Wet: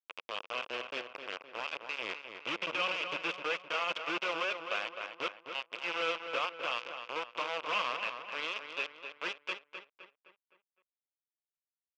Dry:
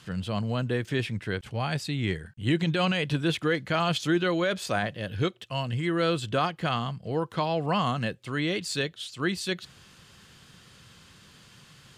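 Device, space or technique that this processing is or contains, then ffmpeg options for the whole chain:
hand-held game console: -filter_complex "[0:a]acrusher=bits=3:mix=0:aa=0.000001,highpass=480,equalizer=f=500:t=q:w=4:g=4,equalizer=f=770:t=q:w=4:g=-6,equalizer=f=1.1k:t=q:w=4:g=3,equalizer=f=1.8k:t=q:w=4:g=-8,equalizer=f=2.6k:t=q:w=4:g=8,equalizer=f=4.1k:t=q:w=4:g=-10,lowpass=f=4.3k:w=0.5412,lowpass=f=4.3k:w=1.3066,equalizer=f=210:w=0.41:g=-5.5,asplit=2[a][b];[b]adelay=258,lowpass=f=3.6k:p=1,volume=-7.5dB,asplit=2[c][d];[d]adelay=258,lowpass=f=3.6k:p=1,volume=0.47,asplit=2[e][f];[f]adelay=258,lowpass=f=3.6k:p=1,volume=0.47,asplit=2[g][h];[h]adelay=258,lowpass=f=3.6k:p=1,volume=0.47,asplit=2[i][j];[j]adelay=258,lowpass=f=3.6k:p=1,volume=0.47[k];[a][c][e][g][i][k]amix=inputs=6:normalize=0,volume=-6.5dB"

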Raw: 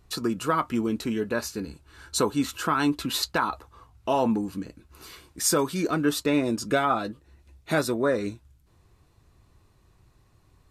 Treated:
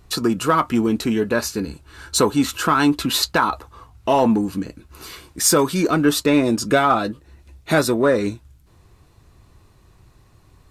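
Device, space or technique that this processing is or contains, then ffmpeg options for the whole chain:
parallel distortion: -filter_complex "[0:a]asplit=2[a][b];[b]asoftclip=type=hard:threshold=-25.5dB,volume=-11dB[c];[a][c]amix=inputs=2:normalize=0,volume=6dB"

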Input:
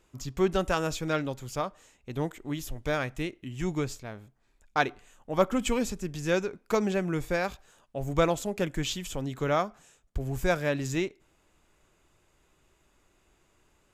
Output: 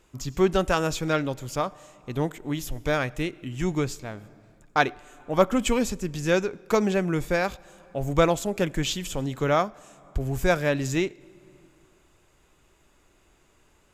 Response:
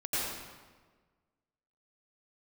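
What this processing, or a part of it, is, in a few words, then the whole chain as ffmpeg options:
compressed reverb return: -filter_complex "[0:a]asplit=2[a][b];[1:a]atrim=start_sample=2205[c];[b][c]afir=irnorm=-1:irlink=0,acompressor=threshold=-31dB:ratio=12,volume=-19.5dB[d];[a][d]amix=inputs=2:normalize=0,volume=4dB"

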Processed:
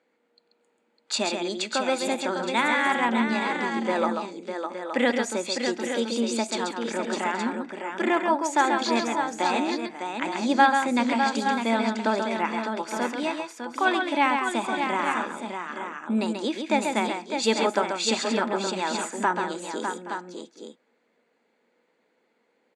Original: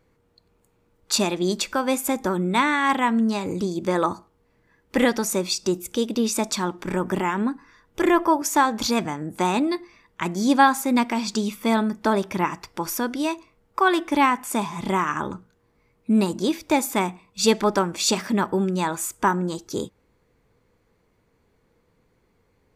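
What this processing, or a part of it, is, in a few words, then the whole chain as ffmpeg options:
television speaker: -af "highpass=420,lowpass=f=12k:w=0.5412,lowpass=f=12k:w=1.3066,highpass=200,equalizer=f=230:t=q:w=4:g=9,equalizer=f=400:t=q:w=4:g=-4,equalizer=f=1.1k:t=q:w=4:g=-8,equalizer=f=5.6k:t=q:w=4:g=-9,lowpass=f=8.1k:w=0.5412,lowpass=f=8.1k:w=1.3066,highshelf=f=5.1k:g=-5,aecho=1:1:135|604|824|869:0.531|0.473|0.126|0.376"

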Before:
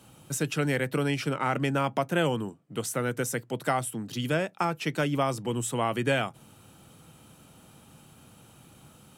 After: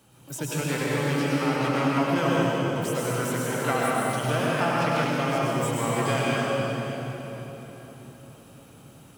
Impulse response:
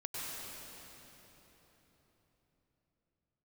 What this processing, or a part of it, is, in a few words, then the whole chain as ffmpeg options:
shimmer-style reverb: -filter_complex "[0:a]asplit=2[a][b];[b]asetrate=88200,aresample=44100,atempo=0.5,volume=-9dB[c];[a][c]amix=inputs=2:normalize=0[d];[1:a]atrim=start_sample=2205[e];[d][e]afir=irnorm=-1:irlink=0,asettb=1/sr,asplit=3[f][g][h];[f]atrim=end=3.524[i];[g]atrim=start=3.52:end=5.11,asetpts=PTS-STARTPTS,afade=t=in:d=0.004:c=qsin,afade=t=out:st=1.586:d=0.004:c=qsin,equalizer=f=1.1k:t=o:w=2.7:g=3.5[j];[h]atrim=start=5.106[k];[i][j]acrossfade=d=0.004:c1=hsin:c2=qsin[l];[l][k]acrossfade=d=0.004:c1=qsin:c2=hsin"

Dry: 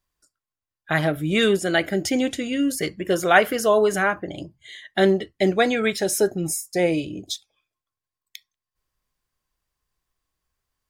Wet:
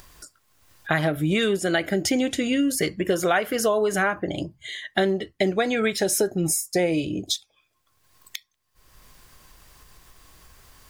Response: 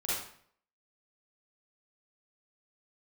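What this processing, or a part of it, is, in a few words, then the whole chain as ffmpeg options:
upward and downward compression: -af "acompressor=mode=upward:threshold=-36dB:ratio=2.5,acompressor=threshold=-24dB:ratio=6,volume=5dB"

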